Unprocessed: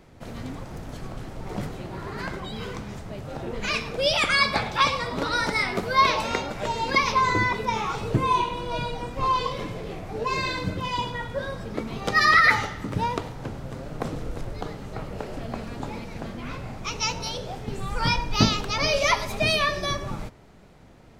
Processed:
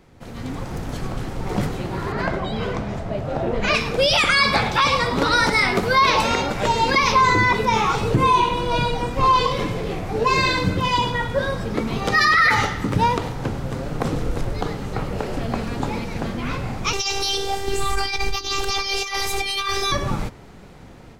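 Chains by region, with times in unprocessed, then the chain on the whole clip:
2.12–3.75 s: low-pass 2.7 kHz 6 dB/octave + peaking EQ 640 Hz +12.5 dB 0.26 oct
16.93–19.92 s: treble shelf 2.6 kHz +8.5 dB + robot voice 393 Hz + compressor with a negative ratio -27 dBFS, ratio -0.5
whole clip: band-stop 630 Hz, Q 12; peak limiter -16.5 dBFS; level rider gain up to 8.5 dB

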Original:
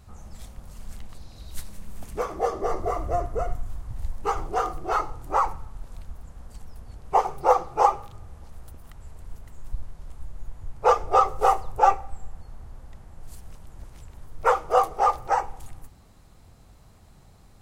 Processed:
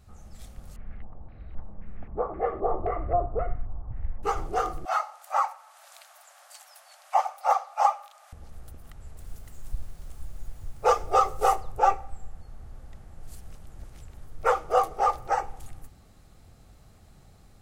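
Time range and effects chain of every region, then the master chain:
0.76–4.23 s: LFO low-pass square 1.9 Hz 930–2100 Hz + tape spacing loss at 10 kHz 35 dB
4.85–8.33 s: steep high-pass 570 Hz 96 dB/octave + tape noise reduction on one side only encoder only
9.17–11.56 s: treble shelf 4.7 kHz +7.5 dB + word length cut 10-bit, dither none
whole clip: band-stop 980 Hz, Q 7.3; level rider gain up to 3.5 dB; trim -4.5 dB

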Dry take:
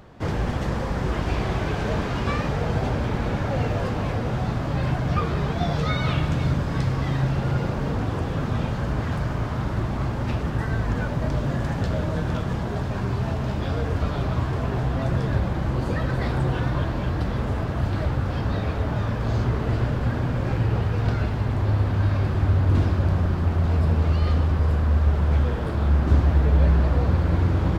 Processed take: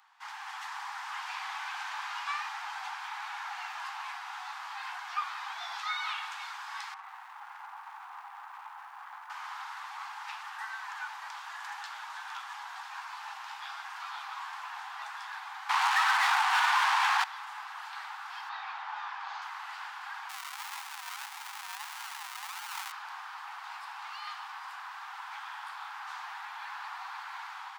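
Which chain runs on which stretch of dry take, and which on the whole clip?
6.94–9.30 s: low-pass 1.1 kHz + hard clipper -24.5 dBFS + bit-crushed delay 92 ms, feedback 35%, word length 9-bit, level -12 dB
15.69–17.24 s: overdrive pedal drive 37 dB, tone 2.6 kHz, clips at -12 dBFS + resonant low shelf 390 Hz -12 dB, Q 1.5
18.49–19.42 s: low-pass 4.8 kHz + peaking EQ 660 Hz +4.5 dB 1.3 oct
20.29–22.92 s: bass shelf 120 Hz -7 dB + decimation with a swept rate 41×, swing 60% 1.6 Hz
whole clip: steep high-pass 800 Hz 96 dB/octave; level rider gain up to 3.5 dB; trim -7.5 dB

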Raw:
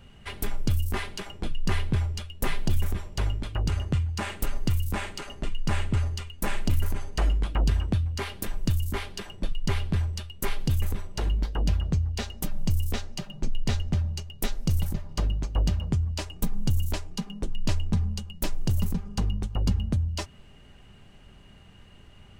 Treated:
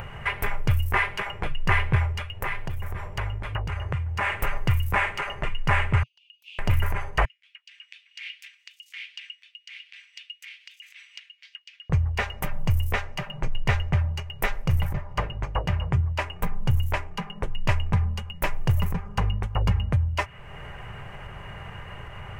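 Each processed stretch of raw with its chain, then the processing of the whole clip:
2.30–4.38 s: compression 3:1, threshold -30 dBFS + mains buzz 100 Hz, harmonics 9, -51 dBFS -9 dB/octave
6.03–6.59 s: steep high-pass 2.7 kHz 96 dB/octave + compression 5:1, threshold -45 dBFS + distance through air 300 m
7.25–11.90 s: distance through air 150 m + compression 3:1, threshold -35 dBFS + steep high-pass 2.6 kHz
14.62–17.38 s: treble shelf 4.4 kHz -4 dB + hum notches 50/100/150/200/250/300/350/400 Hz
whole clip: dynamic bell 2.5 kHz, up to +6 dB, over -52 dBFS, Q 1.2; upward compressor, threshold -30 dBFS; ten-band graphic EQ 125 Hz +8 dB, 250 Hz -11 dB, 500 Hz +6 dB, 1 kHz +9 dB, 2 kHz +10 dB, 4 kHz -10 dB, 8 kHz -5 dB

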